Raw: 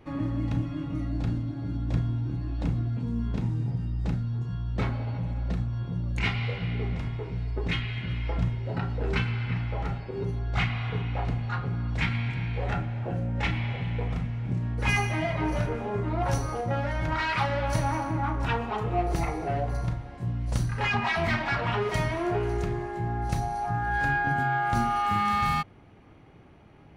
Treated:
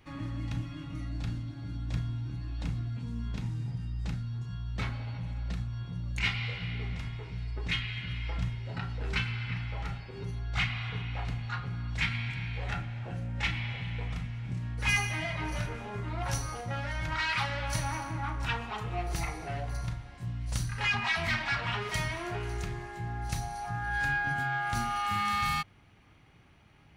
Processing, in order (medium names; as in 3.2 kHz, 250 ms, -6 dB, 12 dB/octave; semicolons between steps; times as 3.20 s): amplifier tone stack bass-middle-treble 5-5-5; trim +9 dB